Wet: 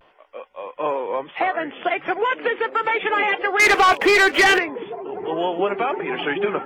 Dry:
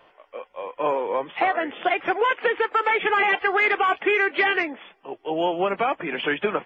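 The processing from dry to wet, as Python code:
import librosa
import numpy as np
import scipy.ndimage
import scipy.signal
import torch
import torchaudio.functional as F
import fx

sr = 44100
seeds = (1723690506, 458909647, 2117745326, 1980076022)

y = fx.leveller(x, sr, passes=3, at=(3.6, 4.58))
y = fx.vibrato(y, sr, rate_hz=0.41, depth_cents=31.0)
y = fx.echo_stepped(y, sr, ms=766, hz=170.0, octaves=0.7, feedback_pct=70, wet_db=-3.0)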